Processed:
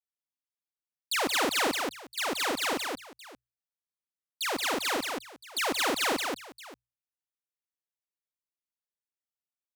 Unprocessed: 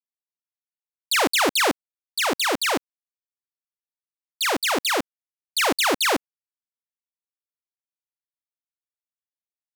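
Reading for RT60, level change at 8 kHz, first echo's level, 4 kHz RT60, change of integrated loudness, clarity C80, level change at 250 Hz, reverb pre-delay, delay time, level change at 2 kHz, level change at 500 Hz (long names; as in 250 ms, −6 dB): no reverb audible, −6.5 dB, −18.0 dB, no reverb audible, −7.5 dB, no reverb audible, −6.5 dB, no reverb audible, 96 ms, −7.0 dB, −7.0 dB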